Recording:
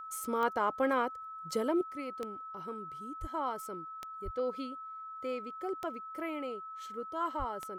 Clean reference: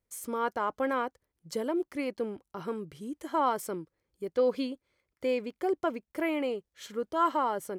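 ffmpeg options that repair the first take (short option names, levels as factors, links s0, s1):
-filter_complex "[0:a]adeclick=t=4,bandreject=f=1300:w=30,asplit=3[s0][s1][s2];[s0]afade=t=out:st=3.2:d=0.02[s3];[s1]highpass=f=140:w=0.5412,highpass=f=140:w=1.3066,afade=t=in:st=3.2:d=0.02,afade=t=out:st=3.32:d=0.02[s4];[s2]afade=t=in:st=3.32:d=0.02[s5];[s3][s4][s5]amix=inputs=3:normalize=0,asplit=3[s6][s7][s8];[s6]afade=t=out:st=4.24:d=0.02[s9];[s7]highpass=f=140:w=0.5412,highpass=f=140:w=1.3066,afade=t=in:st=4.24:d=0.02,afade=t=out:st=4.36:d=0.02[s10];[s8]afade=t=in:st=4.36:d=0.02[s11];[s9][s10][s11]amix=inputs=3:normalize=0,asplit=3[s12][s13][s14];[s12]afade=t=out:st=7.38:d=0.02[s15];[s13]highpass=f=140:w=0.5412,highpass=f=140:w=1.3066,afade=t=in:st=7.38:d=0.02,afade=t=out:st=7.5:d=0.02[s16];[s14]afade=t=in:st=7.5:d=0.02[s17];[s15][s16][s17]amix=inputs=3:normalize=0,asetnsamples=n=441:p=0,asendcmd='1.81 volume volume 8.5dB',volume=1"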